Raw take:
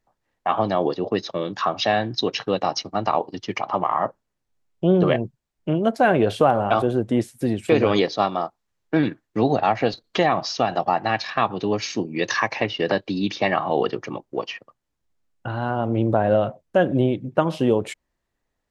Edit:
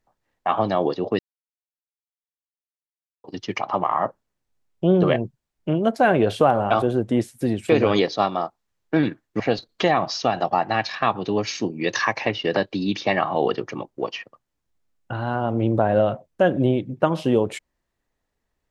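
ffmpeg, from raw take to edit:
ffmpeg -i in.wav -filter_complex "[0:a]asplit=4[link_01][link_02][link_03][link_04];[link_01]atrim=end=1.19,asetpts=PTS-STARTPTS,afade=type=out:start_time=1.186:duration=0.004:curve=hsin[link_05];[link_02]atrim=start=1.19:end=3.24,asetpts=PTS-STARTPTS,volume=0[link_06];[link_03]atrim=start=3.24:end=9.402,asetpts=PTS-STARTPTS,afade=type=in:duration=0.004:curve=hsin[link_07];[link_04]atrim=start=9.748[link_08];[link_05][link_06][link_07]concat=n=3:v=0:a=1[link_09];[link_09][link_08]acrossfade=duration=0.004:curve1=hsin:curve2=hsin" out.wav

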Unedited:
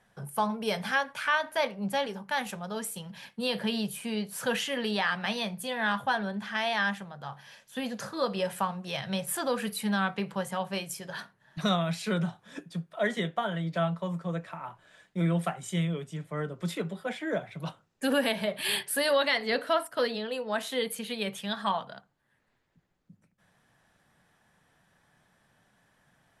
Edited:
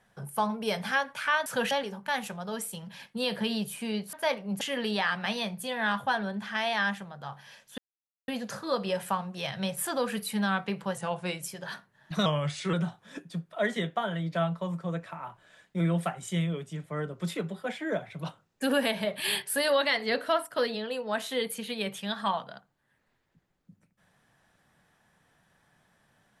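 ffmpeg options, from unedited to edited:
ffmpeg -i in.wav -filter_complex "[0:a]asplit=10[link_01][link_02][link_03][link_04][link_05][link_06][link_07][link_08][link_09][link_10];[link_01]atrim=end=1.462[link_11];[link_02]atrim=start=4.358:end=4.612[link_12];[link_03]atrim=start=1.938:end=4.362[link_13];[link_04]atrim=start=1.458:end=1.942[link_14];[link_05]atrim=start=4.608:end=7.78,asetpts=PTS-STARTPTS,afade=type=out:start_time=3.168:duration=0.004:curve=hsin,apad=pad_dur=0.5[link_15];[link_06]atrim=start=7.78:end=10.474,asetpts=PTS-STARTPTS,afade=type=in:duration=0.004:curve=hsin[link_16];[link_07]atrim=start=10.47:end=10.88,asetpts=PTS-STARTPTS,asetrate=40572,aresample=44100,atrim=end_sample=19653,asetpts=PTS-STARTPTS[link_17];[link_08]atrim=start=10.876:end=11.724[link_18];[link_09]atrim=start=11.72:end=12.14,asetpts=PTS-STARTPTS,asetrate=38808,aresample=44100[link_19];[link_10]atrim=start=12.136[link_20];[link_11][link_12]acrossfade=duration=0.004:curve1=hsin:curve2=hsin[link_21];[link_21][link_13]acrossfade=duration=0.004:curve1=hsin:curve2=hsin[link_22];[link_22][link_14]acrossfade=duration=0.004:curve1=hsin:curve2=hsin[link_23];[link_15][link_16]concat=n=2:v=0:a=1[link_24];[link_23][link_24]acrossfade=duration=0.004:curve1=hsin:curve2=hsin[link_25];[link_25][link_17]acrossfade=duration=0.004:curve1=hsin:curve2=hsin[link_26];[link_26][link_18]acrossfade=duration=0.004:curve1=hsin:curve2=hsin[link_27];[link_27][link_19]acrossfade=duration=0.004:curve1=hsin:curve2=hsin[link_28];[link_28][link_20]acrossfade=duration=0.004:curve1=hsin:curve2=hsin" out.wav

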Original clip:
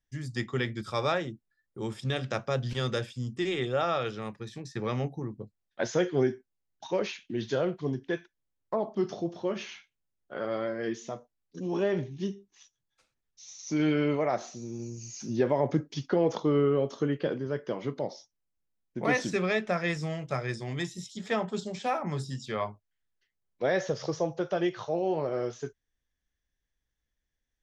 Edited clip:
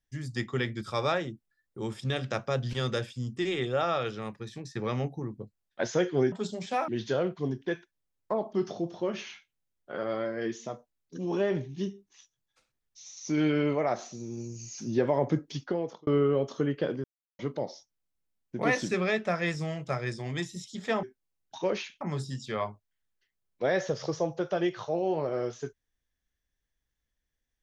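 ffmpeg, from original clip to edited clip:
ffmpeg -i in.wav -filter_complex "[0:a]asplit=8[link_01][link_02][link_03][link_04][link_05][link_06][link_07][link_08];[link_01]atrim=end=6.322[link_09];[link_02]atrim=start=21.448:end=22.012[link_10];[link_03]atrim=start=7.298:end=16.49,asetpts=PTS-STARTPTS,afade=type=out:start_time=8.612:duration=0.58[link_11];[link_04]atrim=start=16.49:end=17.46,asetpts=PTS-STARTPTS,afade=type=in:duration=0.004:curve=hsin,afade=type=out:start_time=0.966:duration=0.004:curve=hsin[link_12];[link_05]atrim=start=17.46:end=17.81,asetpts=PTS-STARTPTS,volume=0[link_13];[link_06]atrim=start=17.81:end=21.452,asetpts=PTS-STARTPTS,afade=type=in:duration=0.004:curve=hsin[link_14];[link_07]atrim=start=6.318:end=7.302[link_15];[link_08]atrim=start=22.008[link_16];[link_09][link_10]acrossfade=duration=0.004:curve1=hsin:curve2=hsin[link_17];[link_11][link_12][link_13][link_14]concat=n=4:v=0:a=1[link_18];[link_17][link_18]acrossfade=duration=0.004:curve1=hsin:curve2=hsin[link_19];[link_19][link_15]acrossfade=duration=0.004:curve1=hsin:curve2=hsin[link_20];[link_20][link_16]acrossfade=duration=0.004:curve1=hsin:curve2=hsin" out.wav

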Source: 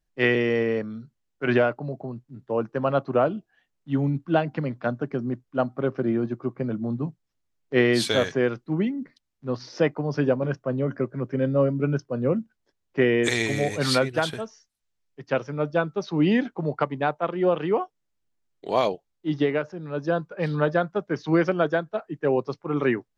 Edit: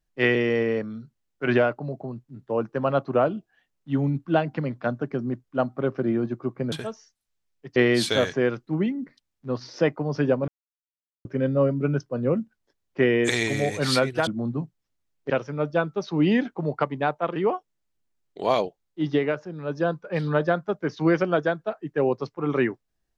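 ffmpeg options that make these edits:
ffmpeg -i in.wav -filter_complex "[0:a]asplit=8[link_01][link_02][link_03][link_04][link_05][link_06][link_07][link_08];[link_01]atrim=end=6.722[link_09];[link_02]atrim=start=14.258:end=15.302[link_10];[link_03]atrim=start=7.748:end=10.47,asetpts=PTS-STARTPTS,afade=type=out:start_time=2.718:duration=0.004:curve=hsin[link_11];[link_04]atrim=start=10.47:end=11.24,asetpts=PTS-STARTPTS,volume=0[link_12];[link_05]atrim=start=11.24:end=14.262,asetpts=PTS-STARTPTS,afade=type=in:duration=0.004:curve=hsin[link_13];[link_06]atrim=start=6.718:end=7.752[link_14];[link_07]atrim=start=15.298:end=17.362[link_15];[link_08]atrim=start=17.628[link_16];[link_09][link_10]acrossfade=duration=0.004:curve1=hsin:curve2=hsin[link_17];[link_11][link_12][link_13]concat=n=3:v=0:a=1[link_18];[link_17][link_18]acrossfade=duration=0.004:curve1=hsin:curve2=hsin[link_19];[link_19][link_14]acrossfade=duration=0.004:curve1=hsin:curve2=hsin[link_20];[link_20][link_15]acrossfade=duration=0.004:curve1=hsin:curve2=hsin[link_21];[link_21][link_16]acrossfade=duration=0.004:curve1=hsin:curve2=hsin" out.wav

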